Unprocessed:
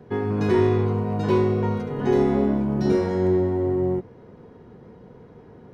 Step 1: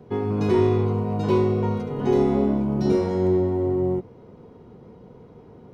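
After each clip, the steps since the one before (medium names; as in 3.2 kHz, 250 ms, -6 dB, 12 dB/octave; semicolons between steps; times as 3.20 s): peaking EQ 1.7 kHz -9 dB 0.36 oct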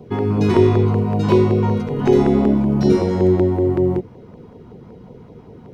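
LFO notch saw down 5.3 Hz 300–1800 Hz; trim +7 dB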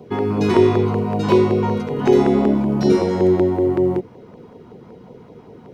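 bass shelf 140 Hz -12 dB; trim +2 dB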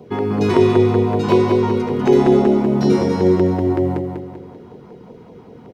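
feedback delay 195 ms, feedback 43%, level -6 dB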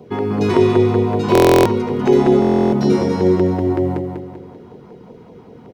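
buffer glitch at 1.33/2.40 s, samples 1024, times 13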